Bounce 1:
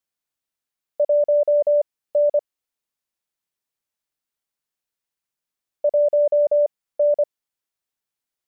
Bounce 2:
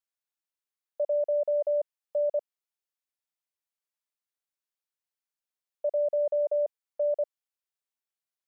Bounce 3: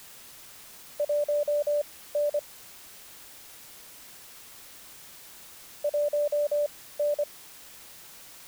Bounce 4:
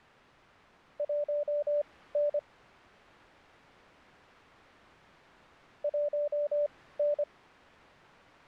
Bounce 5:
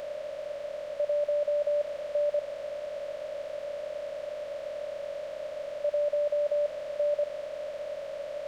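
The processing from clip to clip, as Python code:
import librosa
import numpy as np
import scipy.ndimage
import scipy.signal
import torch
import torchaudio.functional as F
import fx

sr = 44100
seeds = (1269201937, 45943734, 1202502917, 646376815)

y1 = scipy.signal.sosfilt(scipy.signal.butter(2, 430.0, 'highpass', fs=sr, output='sos'), x)
y1 = F.gain(torch.from_numpy(y1), -8.0).numpy()
y2 = fx.quant_dither(y1, sr, seeds[0], bits=8, dither='triangular')
y3 = scipy.signal.sosfilt(scipy.signal.butter(2, 1800.0, 'lowpass', fs=sr, output='sos'), y2)
y3 = fx.rider(y3, sr, range_db=10, speed_s=0.5)
y3 = F.gain(torch.from_numpy(y3), -3.0).numpy()
y4 = fx.bin_compress(y3, sr, power=0.2)
y4 = fx.high_shelf(y4, sr, hz=2300.0, db=10.0)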